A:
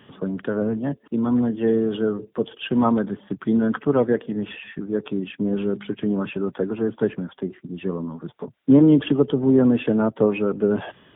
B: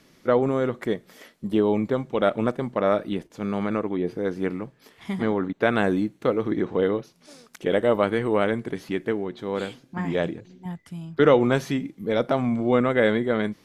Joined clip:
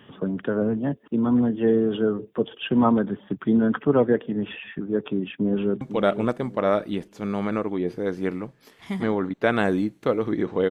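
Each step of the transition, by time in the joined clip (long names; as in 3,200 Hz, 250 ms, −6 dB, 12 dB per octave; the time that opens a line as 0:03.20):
A
0:05.36–0:05.81: delay throw 500 ms, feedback 30%, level −11 dB
0:05.81: continue with B from 0:02.00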